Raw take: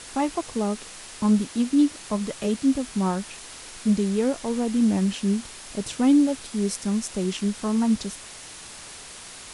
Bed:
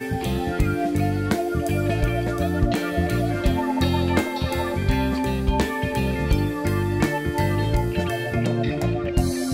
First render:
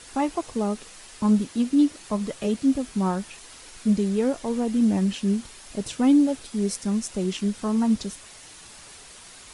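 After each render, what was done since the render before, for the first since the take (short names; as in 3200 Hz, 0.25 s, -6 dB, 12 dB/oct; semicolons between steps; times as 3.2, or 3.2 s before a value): denoiser 6 dB, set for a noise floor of -42 dBFS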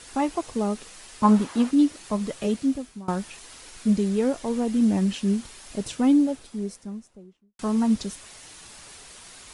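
1.23–1.71 bell 1000 Hz +13 dB 1.8 oct; 2.52–3.08 fade out, to -23.5 dB; 5.76–7.59 studio fade out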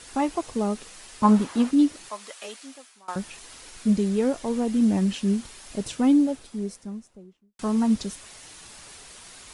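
2.09–3.16 HPF 920 Hz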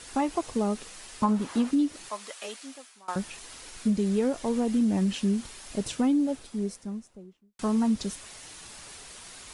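compressor 6:1, threshold -21 dBFS, peak gain reduction 8 dB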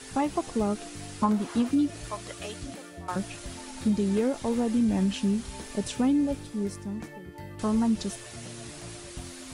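add bed -20.5 dB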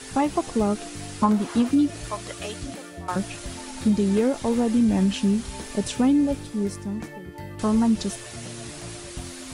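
gain +4.5 dB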